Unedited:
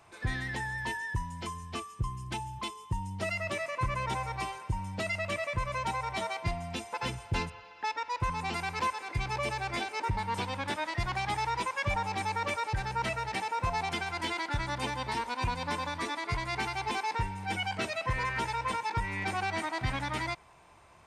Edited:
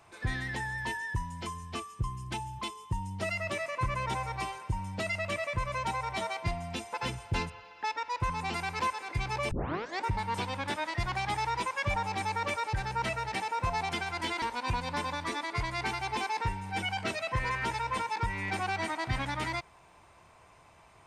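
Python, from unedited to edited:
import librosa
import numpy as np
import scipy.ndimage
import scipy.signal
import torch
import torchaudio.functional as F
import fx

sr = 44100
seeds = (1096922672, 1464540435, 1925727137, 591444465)

y = fx.edit(x, sr, fx.tape_start(start_s=9.51, length_s=0.53),
    fx.cut(start_s=14.42, length_s=0.74), tone=tone)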